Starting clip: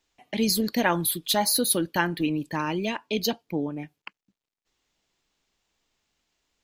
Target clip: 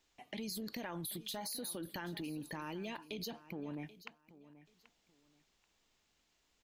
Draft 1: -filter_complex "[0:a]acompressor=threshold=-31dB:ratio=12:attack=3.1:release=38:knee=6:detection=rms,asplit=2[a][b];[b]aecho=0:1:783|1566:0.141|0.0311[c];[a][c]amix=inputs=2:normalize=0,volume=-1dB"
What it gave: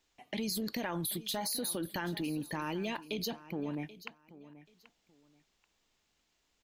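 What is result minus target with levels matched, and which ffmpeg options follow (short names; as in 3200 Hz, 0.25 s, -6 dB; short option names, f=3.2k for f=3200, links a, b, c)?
compressor: peak gain reduction -7 dB
-filter_complex "[0:a]acompressor=threshold=-38.5dB:ratio=12:attack=3.1:release=38:knee=6:detection=rms,asplit=2[a][b];[b]aecho=0:1:783|1566:0.141|0.0311[c];[a][c]amix=inputs=2:normalize=0,volume=-1dB"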